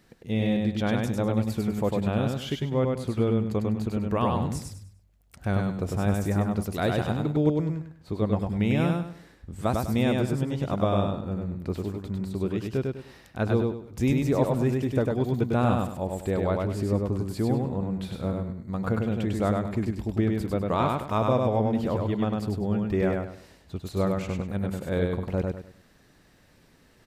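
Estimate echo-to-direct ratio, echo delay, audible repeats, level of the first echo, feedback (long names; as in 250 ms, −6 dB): −2.5 dB, 100 ms, 4, −3.0 dB, 30%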